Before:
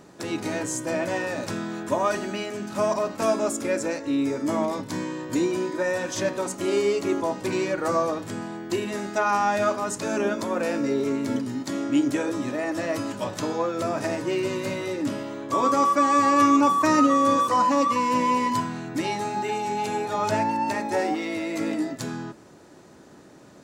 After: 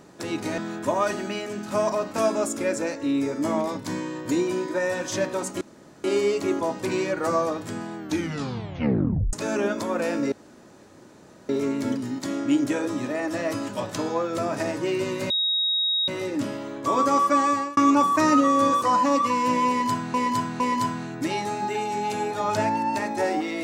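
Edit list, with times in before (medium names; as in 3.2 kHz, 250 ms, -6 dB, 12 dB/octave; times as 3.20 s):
0.58–1.62 s: delete
6.65 s: insert room tone 0.43 s
8.58 s: tape stop 1.36 s
10.93 s: insert room tone 1.17 s
14.74 s: add tone 3.78 kHz -20.5 dBFS 0.78 s
16.07–16.43 s: fade out
18.34–18.80 s: loop, 3 plays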